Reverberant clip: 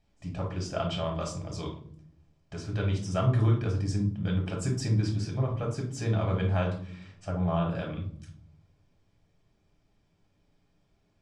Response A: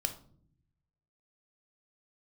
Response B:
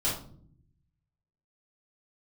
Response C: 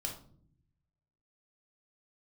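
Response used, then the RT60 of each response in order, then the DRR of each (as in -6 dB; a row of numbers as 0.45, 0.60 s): C; not exponential, not exponential, not exponential; 6.5, -9.5, 0.0 dB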